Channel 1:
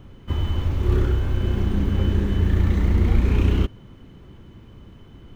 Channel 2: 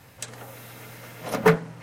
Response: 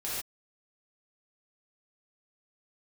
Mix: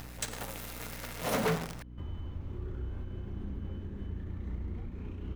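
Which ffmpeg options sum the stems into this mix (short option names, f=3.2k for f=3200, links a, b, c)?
-filter_complex "[0:a]highshelf=f=2.2k:g=-8.5,alimiter=limit=-16.5dB:level=0:latency=1:release=264,adelay=1700,volume=-14dB[a];[1:a]alimiter=limit=-11dB:level=0:latency=1:release=340,acrusher=bits=7:dc=4:mix=0:aa=0.000001,volume=27dB,asoftclip=hard,volume=-27dB,volume=0.5dB,asplit=2[b][c];[c]volume=-15dB[d];[2:a]atrim=start_sample=2205[e];[d][e]afir=irnorm=-1:irlink=0[f];[a][b][f]amix=inputs=3:normalize=0,acompressor=mode=upward:threshold=-41dB:ratio=2.5,aeval=exprs='val(0)+0.00501*(sin(2*PI*60*n/s)+sin(2*PI*2*60*n/s)/2+sin(2*PI*3*60*n/s)/3+sin(2*PI*4*60*n/s)/4+sin(2*PI*5*60*n/s)/5)':c=same"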